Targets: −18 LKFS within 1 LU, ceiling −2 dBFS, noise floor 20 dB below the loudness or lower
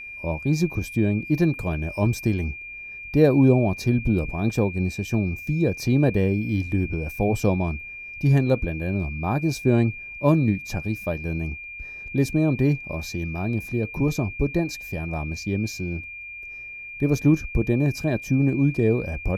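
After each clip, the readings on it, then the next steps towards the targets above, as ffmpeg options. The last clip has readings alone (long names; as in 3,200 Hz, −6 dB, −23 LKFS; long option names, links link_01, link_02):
interfering tone 2,400 Hz; level of the tone −35 dBFS; integrated loudness −23.5 LKFS; sample peak −5.5 dBFS; target loudness −18.0 LKFS
→ -af "bandreject=frequency=2400:width=30"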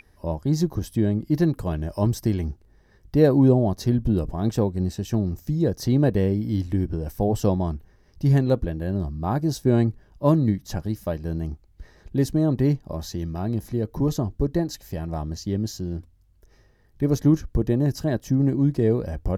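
interfering tone none found; integrated loudness −24.0 LKFS; sample peak −5.0 dBFS; target loudness −18.0 LKFS
→ -af "volume=6dB,alimiter=limit=-2dB:level=0:latency=1"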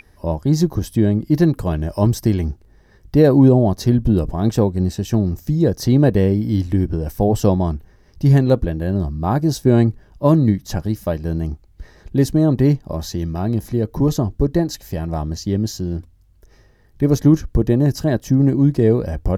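integrated loudness −18.0 LKFS; sample peak −2.0 dBFS; background noise floor −52 dBFS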